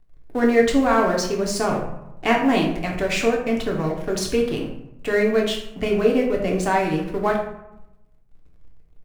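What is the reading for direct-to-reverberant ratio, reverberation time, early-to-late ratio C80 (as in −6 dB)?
−1.5 dB, 0.90 s, 8.5 dB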